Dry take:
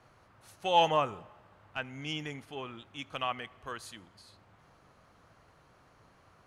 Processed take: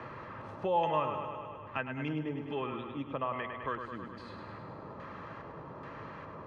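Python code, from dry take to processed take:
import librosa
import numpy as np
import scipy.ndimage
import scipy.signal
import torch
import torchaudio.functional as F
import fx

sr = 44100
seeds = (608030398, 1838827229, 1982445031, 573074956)

p1 = fx.filter_lfo_lowpass(x, sr, shape='square', hz=1.2, low_hz=910.0, high_hz=2100.0, q=0.91)
p2 = fx.notch_comb(p1, sr, f0_hz=730.0)
p3 = p2 + fx.echo_feedback(p2, sr, ms=103, feedback_pct=57, wet_db=-8.0, dry=0)
p4 = fx.band_squash(p3, sr, depth_pct=70)
y = p4 * 10.0 ** (4.5 / 20.0)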